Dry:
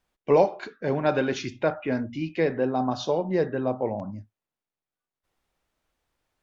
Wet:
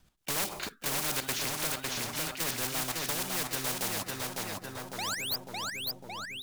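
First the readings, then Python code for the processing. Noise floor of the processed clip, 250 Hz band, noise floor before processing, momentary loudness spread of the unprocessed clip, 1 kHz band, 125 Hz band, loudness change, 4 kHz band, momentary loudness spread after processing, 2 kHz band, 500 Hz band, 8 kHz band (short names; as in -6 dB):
-60 dBFS, -13.0 dB, under -85 dBFS, 10 LU, -7.0 dB, -8.5 dB, -6.0 dB, +9.0 dB, 6 LU, +0.5 dB, -16.5 dB, n/a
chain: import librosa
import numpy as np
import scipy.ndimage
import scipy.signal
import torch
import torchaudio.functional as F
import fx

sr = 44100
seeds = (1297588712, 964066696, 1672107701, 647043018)

p1 = fx.block_float(x, sr, bits=5)
p2 = fx.graphic_eq(p1, sr, hz=(125, 500, 2000), db=(4, -10, -6))
p3 = fx.backlash(p2, sr, play_db=-40.5)
p4 = p2 + (p3 * 10.0 ** (-6.0 / 20.0))
p5 = fx.rotary(p4, sr, hz=6.7)
p6 = fx.spec_paint(p5, sr, seeds[0], shape='rise', start_s=4.98, length_s=0.38, low_hz=680.0, high_hz=5100.0, level_db=-23.0)
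p7 = np.clip(p6, -10.0 ** (-21.5 / 20.0), 10.0 ** (-21.5 / 20.0))
p8 = fx.step_gate(p7, sr, bpm=175, pattern='x.xxxxxx..xxx', floor_db=-12.0, edge_ms=4.5)
p9 = p8 + fx.echo_feedback(p8, sr, ms=554, feedback_pct=38, wet_db=-6, dry=0)
y = fx.spectral_comp(p9, sr, ratio=4.0)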